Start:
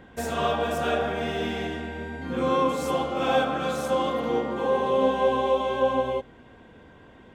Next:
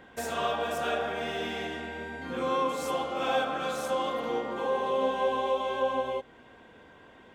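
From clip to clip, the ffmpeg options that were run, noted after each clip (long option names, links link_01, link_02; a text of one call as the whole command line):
ffmpeg -i in.wav -filter_complex "[0:a]lowshelf=frequency=280:gain=-11,asplit=2[link_01][link_02];[link_02]acompressor=threshold=-34dB:ratio=6,volume=-2.5dB[link_03];[link_01][link_03]amix=inputs=2:normalize=0,volume=-4.5dB" out.wav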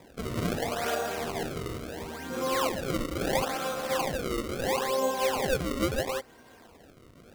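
ffmpeg -i in.wav -af "acrusher=samples=30:mix=1:aa=0.000001:lfo=1:lforange=48:lforate=0.74" out.wav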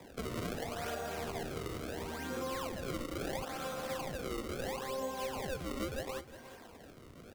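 ffmpeg -i in.wav -filter_complex "[0:a]acrossover=split=99|220[link_01][link_02][link_03];[link_01]acompressor=threshold=-46dB:ratio=4[link_04];[link_02]acompressor=threshold=-51dB:ratio=4[link_05];[link_03]acompressor=threshold=-38dB:ratio=4[link_06];[link_04][link_05][link_06]amix=inputs=3:normalize=0,aecho=1:1:358:0.2" out.wav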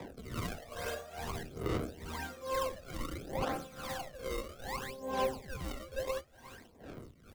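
ffmpeg -i in.wav -af "aphaser=in_gain=1:out_gain=1:delay=1.9:decay=0.63:speed=0.58:type=sinusoidal,tremolo=f=2.3:d=0.81" out.wav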